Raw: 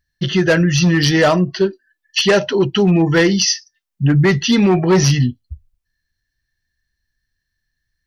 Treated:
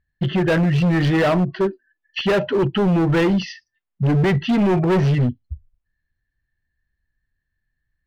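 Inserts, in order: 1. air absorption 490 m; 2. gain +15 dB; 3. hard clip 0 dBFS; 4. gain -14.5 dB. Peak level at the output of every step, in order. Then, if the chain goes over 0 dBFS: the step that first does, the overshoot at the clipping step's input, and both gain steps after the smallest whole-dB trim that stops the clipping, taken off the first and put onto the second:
-6.5, +8.5, 0.0, -14.5 dBFS; step 2, 8.5 dB; step 2 +6 dB, step 4 -5.5 dB

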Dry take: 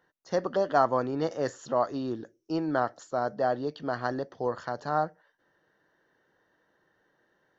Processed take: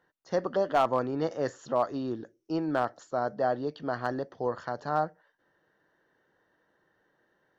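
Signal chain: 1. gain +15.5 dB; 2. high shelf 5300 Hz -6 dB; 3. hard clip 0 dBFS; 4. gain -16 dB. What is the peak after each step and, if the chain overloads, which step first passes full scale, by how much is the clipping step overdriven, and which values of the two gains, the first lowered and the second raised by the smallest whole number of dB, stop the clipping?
+5.5, +5.5, 0.0, -16.0 dBFS; step 1, 5.5 dB; step 1 +9.5 dB, step 4 -10 dB

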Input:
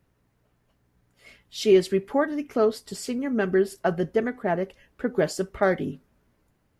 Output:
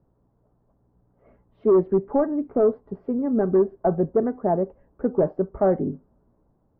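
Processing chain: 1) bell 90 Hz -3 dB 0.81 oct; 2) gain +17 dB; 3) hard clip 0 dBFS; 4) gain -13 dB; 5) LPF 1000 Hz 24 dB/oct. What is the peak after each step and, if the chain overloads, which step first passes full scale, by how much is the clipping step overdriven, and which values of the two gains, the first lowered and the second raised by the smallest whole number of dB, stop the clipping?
-8.0, +9.0, 0.0, -13.0, -11.5 dBFS; step 2, 9.0 dB; step 2 +8 dB, step 4 -4 dB

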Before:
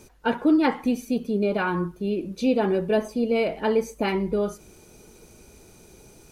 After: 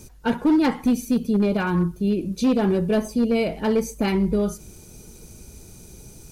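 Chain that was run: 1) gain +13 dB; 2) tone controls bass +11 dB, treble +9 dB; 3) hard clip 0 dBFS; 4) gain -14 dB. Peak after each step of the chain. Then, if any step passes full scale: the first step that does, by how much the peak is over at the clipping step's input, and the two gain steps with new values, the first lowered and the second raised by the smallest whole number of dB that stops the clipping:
+5.0, +5.0, 0.0, -14.0 dBFS; step 1, 5.0 dB; step 1 +8 dB, step 4 -9 dB

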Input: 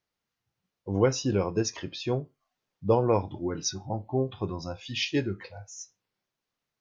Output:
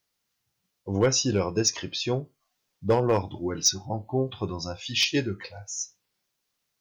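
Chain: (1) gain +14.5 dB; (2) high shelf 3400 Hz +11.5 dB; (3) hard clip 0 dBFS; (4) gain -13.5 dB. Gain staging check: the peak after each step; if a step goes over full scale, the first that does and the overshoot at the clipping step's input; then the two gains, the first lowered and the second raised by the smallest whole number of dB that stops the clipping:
+5.0, +7.0, 0.0, -13.5 dBFS; step 1, 7.0 dB; step 1 +7.5 dB, step 4 -6.5 dB

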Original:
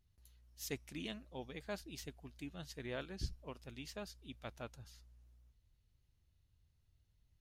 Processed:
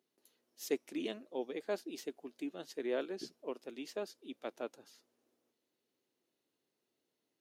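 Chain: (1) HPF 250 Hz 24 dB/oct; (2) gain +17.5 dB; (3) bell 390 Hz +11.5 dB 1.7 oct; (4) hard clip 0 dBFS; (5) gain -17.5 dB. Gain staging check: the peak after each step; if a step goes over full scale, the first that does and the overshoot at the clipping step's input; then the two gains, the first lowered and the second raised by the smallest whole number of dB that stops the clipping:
-28.5, -11.0, -4.5, -4.5, -22.0 dBFS; no overload

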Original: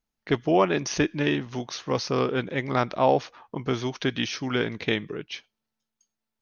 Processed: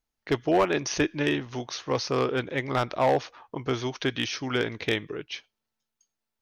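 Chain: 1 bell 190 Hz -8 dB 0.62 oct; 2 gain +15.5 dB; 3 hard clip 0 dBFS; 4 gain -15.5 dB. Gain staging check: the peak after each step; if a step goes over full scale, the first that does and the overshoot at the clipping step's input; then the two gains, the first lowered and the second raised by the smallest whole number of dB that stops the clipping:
-8.0, +7.5, 0.0, -15.5 dBFS; step 2, 7.5 dB; step 2 +7.5 dB, step 4 -7.5 dB

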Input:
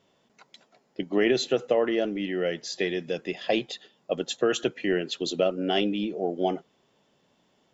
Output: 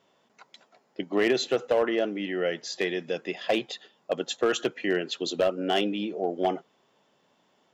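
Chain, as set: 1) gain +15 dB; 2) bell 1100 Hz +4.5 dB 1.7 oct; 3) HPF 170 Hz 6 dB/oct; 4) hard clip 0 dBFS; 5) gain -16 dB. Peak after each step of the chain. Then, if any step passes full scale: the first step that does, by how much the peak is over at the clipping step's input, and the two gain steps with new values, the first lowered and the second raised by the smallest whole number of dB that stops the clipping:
+5.0, +7.0, +7.0, 0.0, -16.0 dBFS; step 1, 7.0 dB; step 1 +8 dB, step 5 -9 dB

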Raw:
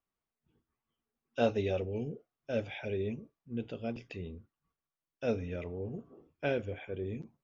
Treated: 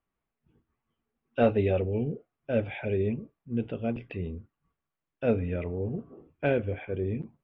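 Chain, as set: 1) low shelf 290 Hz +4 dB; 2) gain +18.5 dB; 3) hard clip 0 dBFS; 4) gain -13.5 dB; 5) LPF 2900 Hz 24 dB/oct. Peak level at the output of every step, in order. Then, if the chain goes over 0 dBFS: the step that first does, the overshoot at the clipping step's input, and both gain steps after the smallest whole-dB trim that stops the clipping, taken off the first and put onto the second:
-14.0, +4.5, 0.0, -13.5, -13.0 dBFS; step 2, 4.5 dB; step 2 +13.5 dB, step 4 -8.5 dB

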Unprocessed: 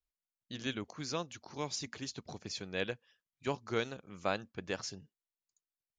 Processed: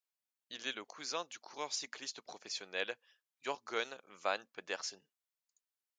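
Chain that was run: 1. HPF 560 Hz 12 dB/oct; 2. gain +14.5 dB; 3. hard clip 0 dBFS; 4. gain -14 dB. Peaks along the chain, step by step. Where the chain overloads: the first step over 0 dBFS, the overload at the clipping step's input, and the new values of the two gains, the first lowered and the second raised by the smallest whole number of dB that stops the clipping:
-19.0, -4.5, -4.5, -18.5 dBFS; no overload

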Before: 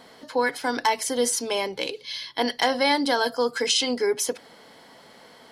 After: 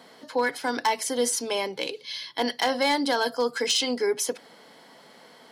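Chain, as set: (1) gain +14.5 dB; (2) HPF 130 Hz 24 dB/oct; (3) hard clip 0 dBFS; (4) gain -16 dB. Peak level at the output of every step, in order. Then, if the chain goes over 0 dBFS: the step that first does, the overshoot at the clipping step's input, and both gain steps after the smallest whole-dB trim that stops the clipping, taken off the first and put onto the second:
+4.0, +5.5, 0.0, -16.0 dBFS; step 1, 5.5 dB; step 1 +8.5 dB, step 4 -10 dB

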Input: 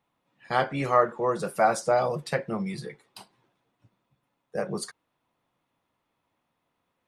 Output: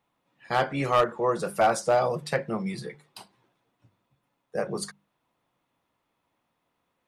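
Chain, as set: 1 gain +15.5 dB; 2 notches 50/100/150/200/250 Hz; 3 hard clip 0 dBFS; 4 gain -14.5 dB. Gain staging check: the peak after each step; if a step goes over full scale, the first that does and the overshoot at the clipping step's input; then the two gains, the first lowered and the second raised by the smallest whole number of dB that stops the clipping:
+8.0, +8.0, 0.0, -14.5 dBFS; step 1, 8.0 dB; step 1 +7.5 dB, step 4 -6.5 dB

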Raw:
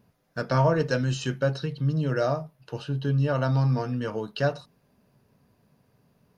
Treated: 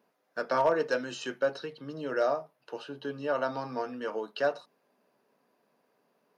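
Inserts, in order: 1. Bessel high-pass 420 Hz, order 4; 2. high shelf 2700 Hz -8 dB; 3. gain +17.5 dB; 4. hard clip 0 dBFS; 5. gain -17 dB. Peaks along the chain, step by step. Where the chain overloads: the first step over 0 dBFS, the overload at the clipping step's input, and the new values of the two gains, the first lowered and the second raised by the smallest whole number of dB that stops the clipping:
-13.5, -14.0, +3.5, 0.0, -17.0 dBFS; step 3, 3.5 dB; step 3 +13.5 dB, step 5 -13 dB

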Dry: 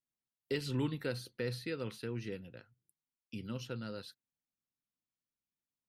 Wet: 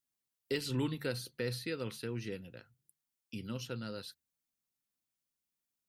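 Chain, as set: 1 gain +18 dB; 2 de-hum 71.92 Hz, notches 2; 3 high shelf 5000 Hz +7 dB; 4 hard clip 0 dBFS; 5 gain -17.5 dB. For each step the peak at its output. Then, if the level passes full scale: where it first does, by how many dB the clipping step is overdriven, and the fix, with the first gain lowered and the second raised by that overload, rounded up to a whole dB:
-5.0, -5.0, -4.5, -4.5, -22.0 dBFS; no overload

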